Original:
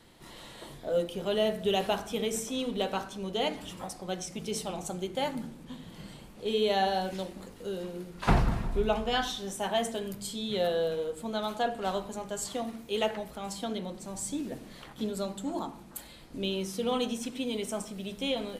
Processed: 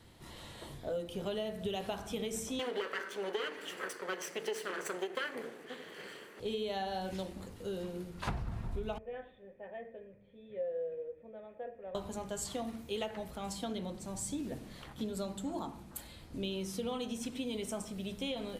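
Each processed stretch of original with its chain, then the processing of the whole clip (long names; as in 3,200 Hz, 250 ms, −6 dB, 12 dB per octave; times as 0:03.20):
0:02.59–0:06.40: lower of the sound and its delayed copy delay 0.66 ms + high-pass with resonance 430 Hz, resonance Q 4.3 + parametric band 1,900 Hz +13 dB 1 octave
0:08.98–0:11.95: formant resonators in series e + parametric band 1,800 Hz −2.5 dB 0.3 octaves
whole clip: parametric band 84 Hz +12 dB 0.92 octaves; downward compressor 16 to 1, threshold −30 dBFS; level −3 dB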